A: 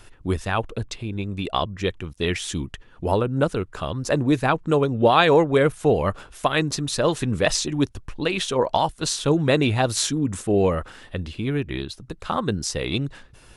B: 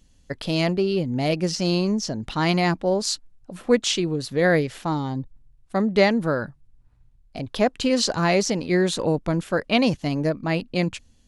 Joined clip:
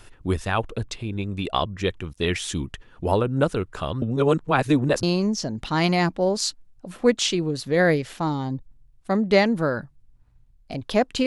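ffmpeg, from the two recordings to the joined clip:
-filter_complex "[0:a]apad=whole_dur=11.26,atrim=end=11.26,asplit=2[s0][s1];[s0]atrim=end=4.022[s2];[s1]atrim=start=4.018:end=5.032,asetpts=PTS-STARTPTS,areverse[s3];[1:a]atrim=start=1.678:end=7.91[s4];[s2][s3]acrossfade=d=0.004:c1=hsin:c2=hsin[s5];[s5][s4]acrossfade=d=0.004:c1=hsin:c2=hsin"

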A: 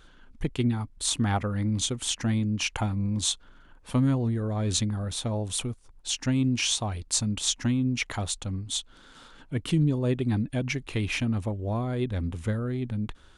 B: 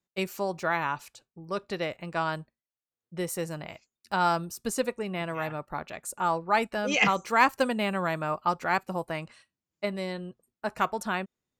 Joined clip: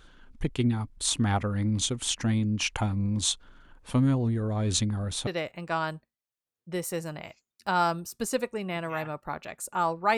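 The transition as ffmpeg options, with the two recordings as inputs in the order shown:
-filter_complex "[0:a]apad=whole_dur=10.17,atrim=end=10.17,atrim=end=5.272[s0];[1:a]atrim=start=1.718:end=6.62[s1];[s0][s1]acrossfade=d=0.004:c1=hsin:c2=hsin"

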